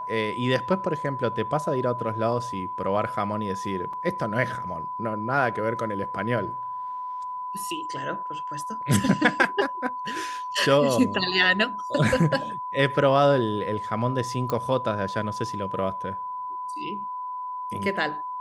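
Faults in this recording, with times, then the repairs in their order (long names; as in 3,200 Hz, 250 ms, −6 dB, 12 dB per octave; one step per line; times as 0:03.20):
whistle 1,000 Hz −30 dBFS
0:03.93: drop-out 3.7 ms
0:14.50: click −14 dBFS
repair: click removal
notch filter 1,000 Hz, Q 30
repair the gap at 0:03.93, 3.7 ms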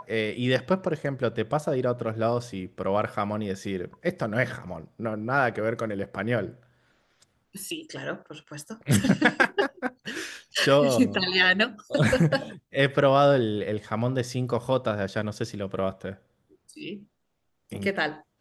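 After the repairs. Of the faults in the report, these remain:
none of them is left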